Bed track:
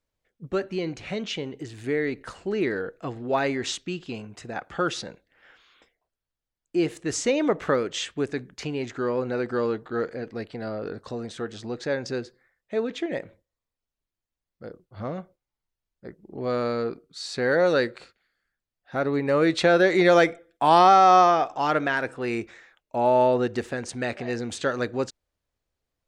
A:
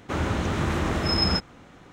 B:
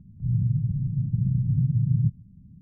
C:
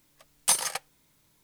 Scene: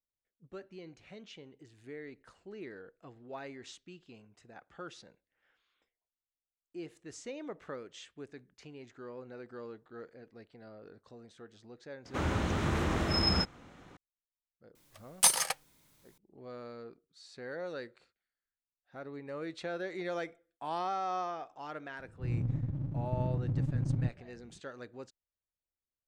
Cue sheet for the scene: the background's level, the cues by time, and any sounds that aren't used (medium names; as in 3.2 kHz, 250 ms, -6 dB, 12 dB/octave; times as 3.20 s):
bed track -19.5 dB
12.05 s: add A -5.5 dB
14.75 s: add C -0.5 dB
21.99 s: add B -8.5 dB + comb filter that takes the minimum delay 1.2 ms